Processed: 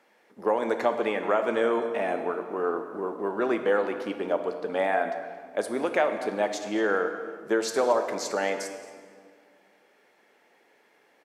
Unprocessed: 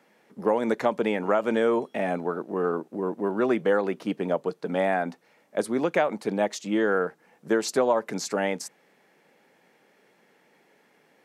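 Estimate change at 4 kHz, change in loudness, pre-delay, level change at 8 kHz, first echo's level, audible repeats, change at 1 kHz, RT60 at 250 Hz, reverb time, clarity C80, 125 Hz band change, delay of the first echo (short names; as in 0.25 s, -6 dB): -0.5 dB, -1.0 dB, 5 ms, -1.5 dB, -18.0 dB, 1, +0.5 dB, 2.3 s, 1.9 s, 9.0 dB, n/a, 0.225 s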